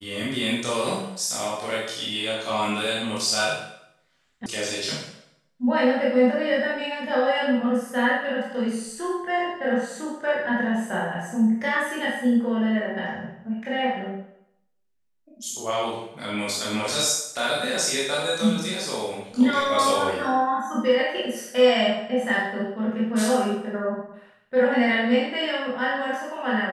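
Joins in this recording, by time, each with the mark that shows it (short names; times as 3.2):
4.46 sound cut off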